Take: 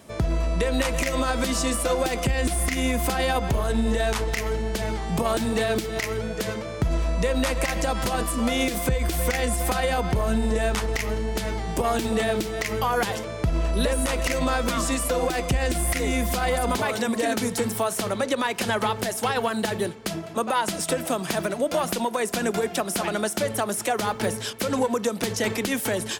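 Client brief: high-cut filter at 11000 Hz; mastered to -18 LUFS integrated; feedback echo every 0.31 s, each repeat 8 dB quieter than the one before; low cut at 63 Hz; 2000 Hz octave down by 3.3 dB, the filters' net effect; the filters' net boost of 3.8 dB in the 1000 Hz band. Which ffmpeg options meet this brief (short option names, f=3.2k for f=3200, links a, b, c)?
-af "highpass=63,lowpass=11k,equalizer=f=1k:t=o:g=6.5,equalizer=f=2k:t=o:g=-6.5,aecho=1:1:310|620|930|1240|1550:0.398|0.159|0.0637|0.0255|0.0102,volume=6dB"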